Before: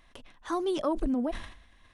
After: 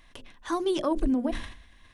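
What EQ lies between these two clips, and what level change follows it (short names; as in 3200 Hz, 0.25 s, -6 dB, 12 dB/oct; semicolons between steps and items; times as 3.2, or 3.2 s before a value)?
bell 710 Hz -4 dB 1.3 oct; notches 60/120/180/240/300/360/420/480/540 Hz; notch 1300 Hz, Q 13; +4.5 dB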